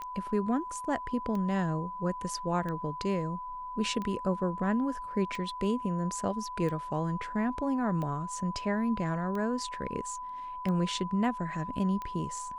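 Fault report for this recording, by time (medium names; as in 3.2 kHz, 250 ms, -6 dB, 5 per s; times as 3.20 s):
tick 45 rpm -25 dBFS
whine 1 kHz -37 dBFS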